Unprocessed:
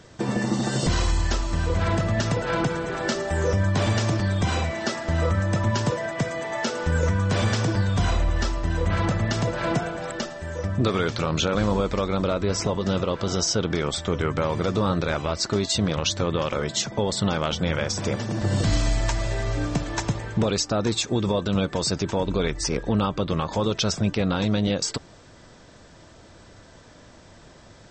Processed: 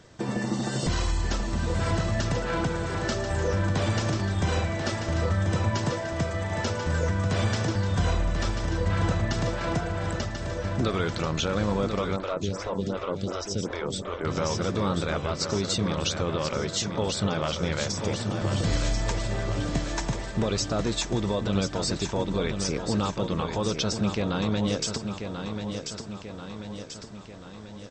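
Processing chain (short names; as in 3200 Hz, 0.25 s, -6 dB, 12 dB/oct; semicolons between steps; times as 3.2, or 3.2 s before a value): feedback echo 1.038 s, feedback 55%, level -7 dB; 12.16–14.25 photocell phaser 2.7 Hz; gain -4 dB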